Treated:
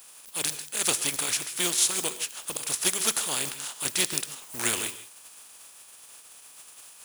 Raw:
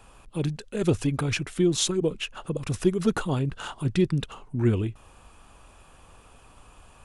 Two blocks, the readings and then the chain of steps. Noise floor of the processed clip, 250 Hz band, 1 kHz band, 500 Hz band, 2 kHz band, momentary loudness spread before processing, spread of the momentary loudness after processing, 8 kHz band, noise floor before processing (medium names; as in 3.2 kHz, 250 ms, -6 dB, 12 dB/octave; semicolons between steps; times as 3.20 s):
-51 dBFS, -15.0 dB, 0.0 dB, -11.0 dB, +3.5 dB, 8 LU, 22 LU, +11.5 dB, -54 dBFS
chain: spectral contrast reduction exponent 0.45; RIAA curve recording; gated-style reverb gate 180 ms rising, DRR 12 dB; trim -7 dB